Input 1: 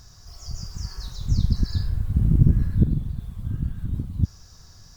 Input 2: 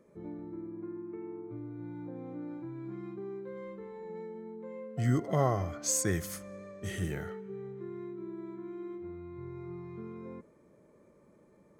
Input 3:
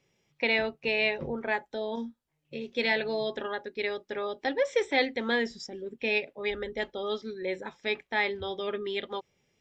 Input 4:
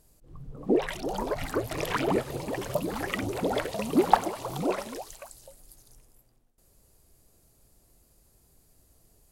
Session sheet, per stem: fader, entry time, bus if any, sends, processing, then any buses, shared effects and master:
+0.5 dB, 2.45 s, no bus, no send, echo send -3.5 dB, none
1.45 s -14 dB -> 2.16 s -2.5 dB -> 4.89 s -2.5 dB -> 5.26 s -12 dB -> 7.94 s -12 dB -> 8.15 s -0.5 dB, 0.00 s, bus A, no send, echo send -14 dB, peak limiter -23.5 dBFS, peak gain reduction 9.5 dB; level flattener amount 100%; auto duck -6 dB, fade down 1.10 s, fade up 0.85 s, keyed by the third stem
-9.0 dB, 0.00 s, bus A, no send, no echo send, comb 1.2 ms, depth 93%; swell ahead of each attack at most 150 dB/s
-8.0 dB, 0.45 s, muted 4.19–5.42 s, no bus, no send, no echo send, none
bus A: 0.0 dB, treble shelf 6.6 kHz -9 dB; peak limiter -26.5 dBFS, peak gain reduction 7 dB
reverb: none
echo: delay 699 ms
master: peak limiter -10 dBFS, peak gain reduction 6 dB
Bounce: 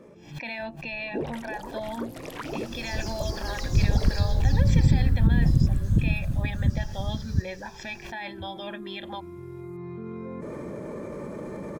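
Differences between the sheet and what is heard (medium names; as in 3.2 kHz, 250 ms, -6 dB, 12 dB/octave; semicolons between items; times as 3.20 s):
stem 2 -14.0 dB -> -20.5 dB; stem 3 -9.0 dB -> -0.5 dB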